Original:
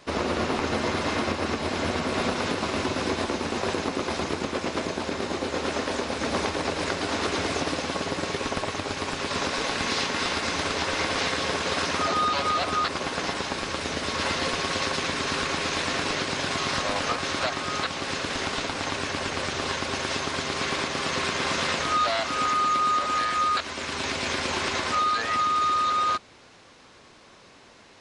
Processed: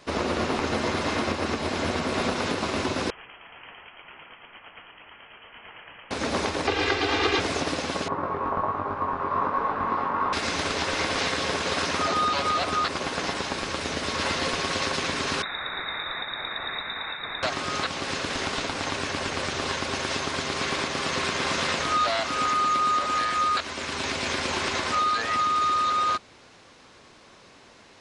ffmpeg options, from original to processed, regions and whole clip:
ffmpeg -i in.wav -filter_complex "[0:a]asettb=1/sr,asplit=3[link_01][link_02][link_03];[link_01]atrim=end=3.104[link_04];[link_02]atrim=start=3.1:end=6.11,asetpts=PTS-STARTPTS,afade=type=in:duration=0.004:curve=qsin,afade=type=out:start_time=3.006:duration=0.004:curve=qsin,aderivative,lowpass=frequency=3000:width_type=q:width=0.5098,lowpass=frequency=3000:width_type=q:width=0.6013,lowpass=frequency=3000:width_type=q:width=0.9,lowpass=frequency=3000:width_type=q:width=2.563,afreqshift=-3500[link_05];[link_03]atrim=start=6.106[link_06];[link_04][link_05]acrossfade=duration=0.004:curve1=hsin:curve2=qsin[link_07];[link_07][link_06]acrossfade=duration=0.004:curve1=qsin:curve2=hsin,asettb=1/sr,asplit=3[link_08][link_09][link_10];[link_08]atrim=end=6.674[link_11];[link_09]atrim=start=6.67:end=7.4,asetpts=PTS-STARTPTS,afade=type=in:duration=0.004:curve=qsin,afade=type=out:start_time=0.726:duration=0.004:curve=qsin,lowpass=4800,equalizer=frequency=2700:width=1:gain=5,aecho=1:1:2.5:0.87,atrim=end_sample=32193[link_12];[link_10]atrim=start=7.396[link_13];[link_11][link_12]acrossfade=duration=0.004:curve1=hsin:curve2=qsin[link_14];[link_14][link_13]acrossfade=duration=0.004:curve1=qsin:curve2=hsin,asettb=1/sr,asplit=3[link_15][link_16][link_17];[link_15]atrim=end=8.084[link_18];[link_16]atrim=start=8.08:end=10.33,asetpts=PTS-STARTPTS,afade=type=in:duration=0.004:curve=qsin,afade=type=out:start_time=2.246:duration=0.004:curve=qsin,flanger=delay=20:depth=2.5:speed=1.3,lowpass=frequency=1100:width_type=q:width=4.2[link_19];[link_17]atrim=start=10.326[link_20];[link_18][link_19]acrossfade=duration=0.004:curve1=hsin:curve2=qsin[link_21];[link_21][link_20]acrossfade=duration=0.004:curve1=qsin:curve2=hsin,asettb=1/sr,asplit=3[link_22][link_23][link_24];[link_22]atrim=end=15.424[link_25];[link_23]atrim=start=15.42:end=17.43,asetpts=PTS-STARTPTS,afade=type=in:duration=0.004:curve=qsin,afade=type=out:start_time=2.006:duration=0.004:curve=qsin,asuperstop=centerf=740:order=8:qfactor=0.5,lowpass=frequency=3300:width_type=q:width=0.5098,lowpass=frequency=3300:width_type=q:width=0.6013,lowpass=frequency=3300:width_type=q:width=0.9,lowpass=frequency=3300:width_type=q:width=2.563,afreqshift=-3900[link_26];[link_24]atrim=start=17.426[link_27];[link_25][link_26]acrossfade=duration=0.004:curve1=hsin:curve2=qsin[link_28];[link_28][link_27]acrossfade=duration=0.004:curve1=qsin:curve2=hsin" out.wav

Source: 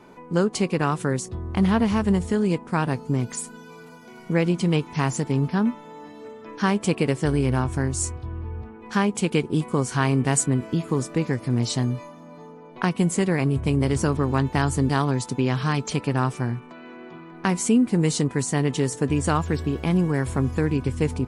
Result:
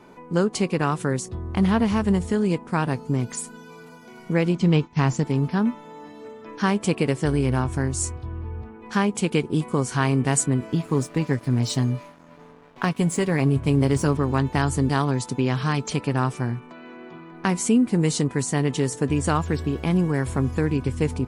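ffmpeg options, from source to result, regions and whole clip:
ffmpeg -i in.wav -filter_complex "[0:a]asettb=1/sr,asplit=3[link_01][link_02][link_03];[link_01]atrim=end=4.554[link_04];[link_02]atrim=start=4.55:end=5.24,asetpts=PTS-STARTPTS,afade=type=in:duration=0.004:curve=qsin,afade=type=out:start_time=0.686:duration=0.004:curve=qsin,lowpass=frequency=7100:width=0.5412,lowpass=frequency=7100:width=1.3066,lowshelf=frequency=180:gain=6.5,agate=range=-33dB:threshold=-29dB:ratio=3:release=100:detection=peak[link_05];[link_03]atrim=start=5.236[link_06];[link_04][link_05]acrossfade=duration=0.004:curve1=hsin:curve2=qsin[link_07];[link_07][link_06]acrossfade=duration=0.004:curve1=qsin:curve2=hsin,asettb=1/sr,asplit=3[link_08][link_09][link_10];[link_08]atrim=end=10.724[link_11];[link_09]atrim=start=10.72:end=14.19,asetpts=PTS-STARTPTS,afade=type=in:duration=0.004:curve=qsin,afade=type=out:start_time=3.466:duration=0.004:curve=qsin,aecho=1:1:7.2:0.37,atrim=end_sample=153027,aeval=exprs='sgn(val(0))*max(abs(val(0))-0.00596,0)':channel_layout=same[link_12];[link_10]atrim=start=14.186[link_13];[link_11][link_12]acrossfade=duration=0.004:curve1=hsin:curve2=qsin[link_14];[link_14][link_13]acrossfade=duration=0.004:curve1=qsin:curve2=hsin" out.wav

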